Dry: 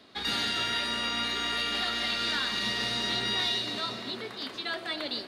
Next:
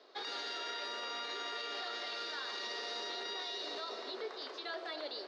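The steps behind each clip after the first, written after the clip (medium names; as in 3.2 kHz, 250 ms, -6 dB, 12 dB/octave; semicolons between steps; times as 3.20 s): elliptic band-pass 410–5600 Hz, stop band 50 dB; peaking EQ 2.6 kHz -10.5 dB 2.1 oct; peak limiter -33.5 dBFS, peak gain reduction 7.5 dB; trim +1.5 dB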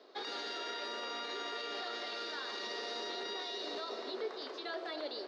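bass shelf 460 Hz +8.5 dB; trim -1 dB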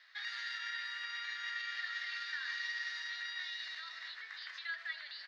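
doubling 15 ms -11 dB; peak limiter -35 dBFS, peak gain reduction 6 dB; ladder high-pass 1.7 kHz, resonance 75%; trim +10.5 dB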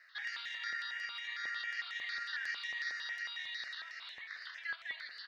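stepped phaser 11 Hz 920–4600 Hz; trim +3 dB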